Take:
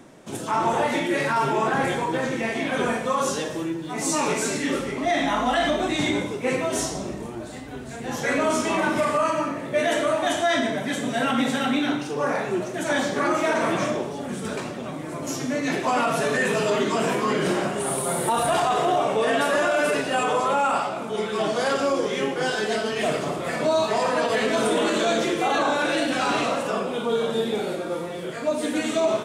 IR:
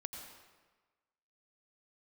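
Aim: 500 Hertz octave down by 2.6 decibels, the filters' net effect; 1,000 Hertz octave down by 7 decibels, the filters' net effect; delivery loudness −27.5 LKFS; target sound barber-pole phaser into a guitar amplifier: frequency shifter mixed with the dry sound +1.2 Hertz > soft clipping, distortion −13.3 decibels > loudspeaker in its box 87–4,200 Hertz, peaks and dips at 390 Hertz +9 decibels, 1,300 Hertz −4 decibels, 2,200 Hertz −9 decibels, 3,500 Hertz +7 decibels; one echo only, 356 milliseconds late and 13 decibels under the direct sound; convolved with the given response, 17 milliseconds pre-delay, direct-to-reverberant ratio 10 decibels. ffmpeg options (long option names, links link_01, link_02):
-filter_complex "[0:a]equalizer=frequency=500:width_type=o:gain=-6,equalizer=frequency=1000:width_type=o:gain=-6,aecho=1:1:356:0.224,asplit=2[link_01][link_02];[1:a]atrim=start_sample=2205,adelay=17[link_03];[link_02][link_03]afir=irnorm=-1:irlink=0,volume=-8dB[link_04];[link_01][link_04]amix=inputs=2:normalize=0,asplit=2[link_05][link_06];[link_06]afreqshift=1.2[link_07];[link_05][link_07]amix=inputs=2:normalize=1,asoftclip=threshold=-26.5dB,highpass=87,equalizer=frequency=390:width_type=q:width=4:gain=9,equalizer=frequency=1300:width_type=q:width=4:gain=-4,equalizer=frequency=2200:width_type=q:width=4:gain=-9,equalizer=frequency=3500:width_type=q:width=4:gain=7,lowpass=frequency=4200:width=0.5412,lowpass=frequency=4200:width=1.3066,volume=4dB"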